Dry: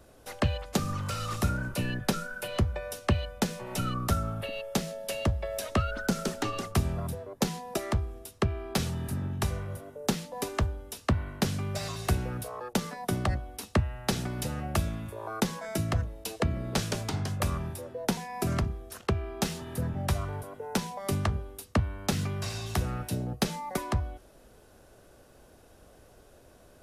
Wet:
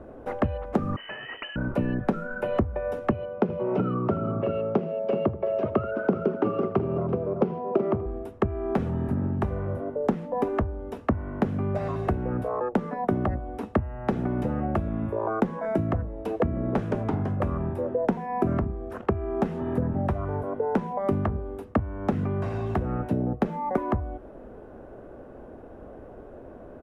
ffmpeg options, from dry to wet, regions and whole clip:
-filter_complex "[0:a]asettb=1/sr,asplit=3[s0][s1][s2];[s0]atrim=end=0.964[s3];[s1]atrim=start=0.96:end=1.56,asetpts=PTS-STARTPTS,afade=t=in:d=0.004:c=qsin,afade=t=out:st=0.596:d=0.004:c=qsin,agate=range=0.0224:threshold=0.0282:ratio=3:release=100:detection=peak,lowpass=f=2600:t=q:w=0.5098,lowpass=f=2600:t=q:w=0.6013,lowpass=f=2600:t=q:w=0.9,lowpass=f=2600:t=q:w=2.563,afreqshift=-3100[s4];[s2]atrim=start=1.556[s5];[s3][s4]acrossfade=d=0.004:c1=hsin:c2=qsin[s6];[s6][s5]acrossfade=d=0.004:c1=qsin:c2=hsin,asettb=1/sr,asplit=3[s7][s8][s9];[s7]atrim=end=3.114[s10];[s8]atrim=start=3.11:end=8.06,asetpts=PTS-STARTPTS,afade=t=in:d=0.004:c=qsin,afade=t=out:st=4.946:d=0.004:c=qsin,highpass=f=110:w=0.5412,highpass=f=110:w=1.3066,equalizer=f=260:t=q:w=4:g=-5,equalizer=f=400:t=q:w=4:g=6,equalizer=f=830:t=q:w=4:g=-4,equalizer=f=1800:t=q:w=4:g=-10,equalizer=f=3800:t=q:w=4:g=-7,lowpass=f=4500:w=0.5412,lowpass=f=4500:w=1.3066,aecho=1:1:80|376:0.119|0.335,atrim=end_sample=218295[s11];[s9]atrim=start=8.056[s12];[s10][s11]acrossfade=d=0.004:c1=hsin:c2=qsin[s13];[s13][s12]acrossfade=d=0.004:c1=qsin:c2=hsin,highshelf=f=5900:g=-5,acompressor=threshold=0.0158:ratio=3,firequalizer=gain_entry='entry(150,0);entry(230,7);entry(4300,-25)':delay=0.05:min_phase=1,volume=2.82"

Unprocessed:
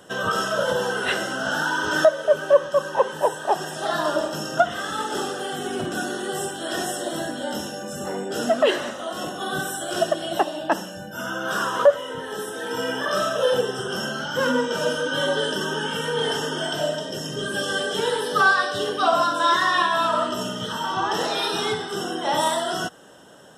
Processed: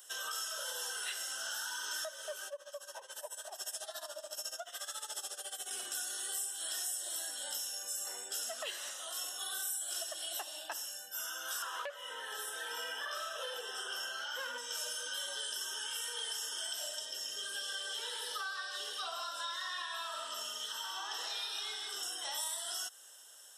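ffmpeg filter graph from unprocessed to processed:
-filter_complex "[0:a]asettb=1/sr,asplit=3[s0][s1][s2];[s0]atrim=end=2.474[s3];[s1]atrim=start=2.47:end=5.71,asetpts=PTS-STARTPTS,afade=t=in:d=0.004:c=qsin,afade=t=out:st=3.236:d=0.004:c=qsin,equalizer=f=610:w=4.1:g=12.5,acompressor=threshold=0.0562:ratio=2:attack=3.2:release=140:knee=1:detection=peak,tremolo=f=14:d=0.84[s4];[s2]atrim=start=5.706[s5];[s3][s4]acrossfade=d=0.004:c1=hsin:c2=qsin[s6];[s6][s5]acrossfade=d=0.004:c1=qsin:c2=hsin,asettb=1/sr,asplit=3[s7][s8][s9];[s7]atrim=end=11.624[s10];[s8]atrim=start=11.62:end=14.58,asetpts=PTS-STARTPTS,afade=t=in:d=0.004:c=qsin,afade=t=out:st=2.956:d=0.004:c=qsin,bass=f=250:g=-8,treble=f=4000:g=-14,aeval=exprs='0.562*sin(PI/2*1.41*val(0)/0.562)':c=same[s11];[s9]atrim=start=14.576[s12];[s10][s11]acrossfade=d=0.004:c1=hsin:c2=qsin[s13];[s13][s12]acrossfade=d=0.004:c1=qsin:c2=hsin,asettb=1/sr,asplit=3[s14][s15][s16];[s14]atrim=end=17.054[s17];[s15]atrim=start=17.05:end=22.03,asetpts=PTS-STARTPTS,afade=t=in:d=0.004:c=qsin,afade=t=out:st=4.976:d=0.004:c=qsin,acrossover=split=5100[s18][s19];[s19]acompressor=threshold=0.00398:ratio=4:attack=1:release=60[s20];[s18][s20]amix=inputs=2:normalize=0,aecho=1:1:155:0.422,atrim=end_sample=219618[s21];[s16]atrim=start=22.026[s22];[s17][s21]acrossfade=d=0.004:c1=hsin:c2=qsin[s23];[s23][s22]acrossfade=d=0.004:c1=qsin:c2=hsin,aderivative,acompressor=threshold=0.0126:ratio=6,bass=f=250:g=-15,treble=f=4000:g=3"

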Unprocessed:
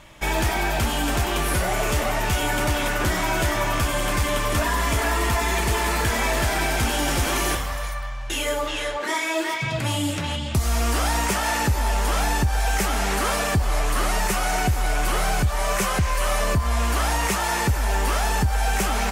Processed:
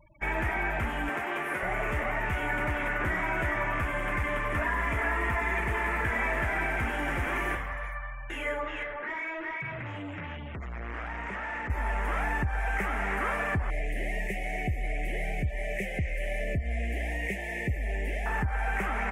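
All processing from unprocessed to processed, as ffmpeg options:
-filter_complex "[0:a]asettb=1/sr,asplit=3[s0][s1][s2];[s0]atrim=end=1.094[s3];[s1]atrim=start=1.09:end=1.63,asetpts=PTS-STARTPTS,afade=t=in:d=0.004:c=qsin,afade=t=out:st=0.536:d=0.004:c=qsin,highpass=260,asplit=2[s4][s5];[s5]adelay=14,volume=0.251[s6];[s4][s6]amix=inputs=2:normalize=0,atrim=end_sample=23814[s7];[s2]atrim=start=1.626[s8];[s3][s7]acrossfade=d=0.004:c1=hsin:c2=qsin[s9];[s9][s8]acrossfade=d=0.004:c1=qsin:c2=hsin,asettb=1/sr,asplit=3[s10][s11][s12];[s10]atrim=end=8.834[s13];[s11]atrim=start=8.83:end=11.7,asetpts=PTS-STARTPTS,afade=t=in:d=0.004:c=qsin,afade=t=out:st=2.866:d=0.004:c=qsin,lowpass=9200,highshelf=f=7300:g=-9,volume=23.7,asoftclip=hard,volume=0.0422[s14];[s12]atrim=start=11.696[s15];[s13][s14]acrossfade=d=0.004:c1=hsin:c2=qsin[s16];[s16][s15]acrossfade=d=0.004:c1=qsin:c2=hsin,asettb=1/sr,asplit=3[s17][s18][s19];[s17]atrim=end=13.704[s20];[s18]atrim=start=13.7:end=18.26,asetpts=PTS-STARTPTS,afade=t=in:d=0.004:c=qsin,afade=t=out:st=4.556:d=0.004:c=qsin,asuperstop=centerf=1200:order=8:qfactor=1.1,equalizer=f=830:t=o:w=0.25:g=-8[s21];[s19]atrim=start=18.256[s22];[s20][s21]acrossfade=d=0.004:c1=hsin:c2=qsin[s23];[s23][s22]acrossfade=d=0.004:c1=qsin:c2=hsin,afftfilt=real='re*gte(hypot(re,im),0.0112)':imag='im*gte(hypot(re,im),0.0112)':win_size=1024:overlap=0.75,highshelf=f=3000:t=q:w=3:g=-13.5,bandreject=f=4200:w=25,volume=0.376"

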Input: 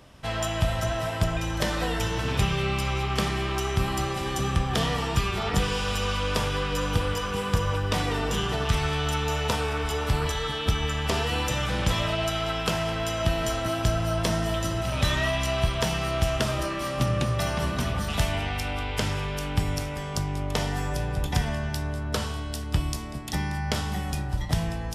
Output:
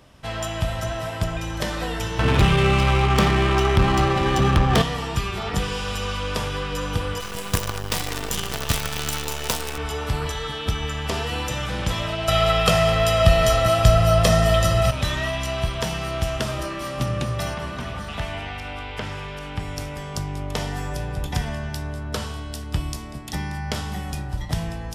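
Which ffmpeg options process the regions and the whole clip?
-filter_complex "[0:a]asettb=1/sr,asplit=3[s0][s1][s2];[s0]atrim=end=2.194[s3];[s1]atrim=start=2.19:end=4.82,asetpts=PTS-STARTPTS,afade=t=in:d=0.004:c=qsin,afade=t=out:st=2.626:d=0.004:c=qsin,adynamicsmooth=sensitivity=4.5:basefreq=1900,aeval=exprs='0.316*sin(PI/2*2*val(0)/0.316)':c=same[s4];[s2]atrim=start=4.816[s5];[s3][s4]acrossfade=d=0.004:c1=hsin:c2=qsin[s6];[s6][s5]acrossfade=d=0.004:c1=qsin:c2=hsin,asettb=1/sr,asplit=3[s7][s8][s9];[s7]atrim=end=7.204[s10];[s8]atrim=start=7.2:end=9.78,asetpts=PTS-STARTPTS,afade=t=in:d=0.004:c=qsin,afade=t=out:st=2.576:d=0.004:c=qsin,highshelf=f=4500:g=11.5,acrusher=bits=4:dc=4:mix=0:aa=0.000001[s11];[s9]atrim=start=9.776[s12];[s10][s11]acrossfade=d=0.004:c1=hsin:c2=qsin[s13];[s13][s12]acrossfade=d=0.004:c1=qsin:c2=hsin,asettb=1/sr,asplit=3[s14][s15][s16];[s14]atrim=end=12.284[s17];[s15]atrim=start=12.28:end=14.91,asetpts=PTS-STARTPTS,afade=t=in:d=0.004:c=qsin,afade=t=out:st=2.626:d=0.004:c=qsin,acontrast=66,aecho=1:1:1.6:0.71,atrim=end_sample=115983[s18];[s16]atrim=start=14.906[s19];[s17][s18]acrossfade=d=0.004:c1=hsin:c2=qsin[s20];[s20][s19]acrossfade=d=0.004:c1=qsin:c2=hsin,asettb=1/sr,asplit=3[s21][s22][s23];[s21]atrim=end=17.544[s24];[s22]atrim=start=17.54:end=19.78,asetpts=PTS-STARTPTS,afade=t=in:d=0.004:c=qsin,afade=t=out:st=2.236:d=0.004:c=qsin,lowpass=12000,lowshelf=f=450:g=-5,acrossover=split=3300[s25][s26];[s26]acompressor=threshold=0.00501:ratio=4:attack=1:release=60[s27];[s25][s27]amix=inputs=2:normalize=0[s28];[s23]atrim=start=19.776[s29];[s24][s28]acrossfade=d=0.004:c1=hsin:c2=qsin[s30];[s30][s29]acrossfade=d=0.004:c1=qsin:c2=hsin"

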